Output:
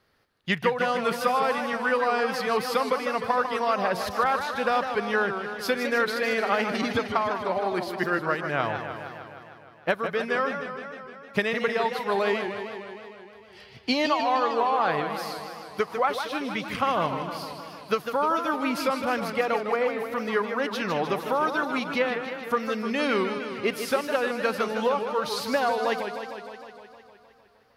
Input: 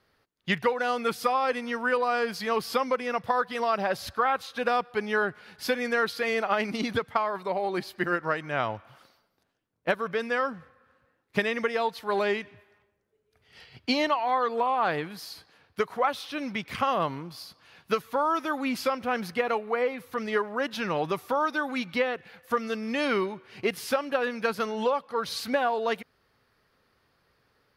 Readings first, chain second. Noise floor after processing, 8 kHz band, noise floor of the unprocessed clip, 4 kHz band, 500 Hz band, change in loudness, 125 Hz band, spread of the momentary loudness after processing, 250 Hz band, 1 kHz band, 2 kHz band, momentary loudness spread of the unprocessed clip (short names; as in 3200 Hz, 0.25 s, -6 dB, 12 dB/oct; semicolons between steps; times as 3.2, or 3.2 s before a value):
-52 dBFS, +2.0 dB, -71 dBFS, +2.0 dB, +2.0 dB, +2.0 dB, +2.5 dB, 12 LU, +2.0 dB, +2.0 dB, +2.0 dB, 7 LU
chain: warbling echo 0.154 s, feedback 70%, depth 175 cents, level -8 dB; gain +1 dB